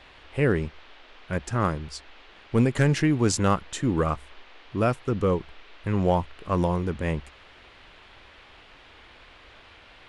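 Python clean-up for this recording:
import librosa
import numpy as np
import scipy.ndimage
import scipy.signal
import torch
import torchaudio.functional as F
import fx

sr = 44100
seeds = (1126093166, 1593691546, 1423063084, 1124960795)

y = fx.fix_declip(x, sr, threshold_db=-11.5)
y = fx.noise_reduce(y, sr, print_start_s=8.44, print_end_s=8.94, reduce_db=19.0)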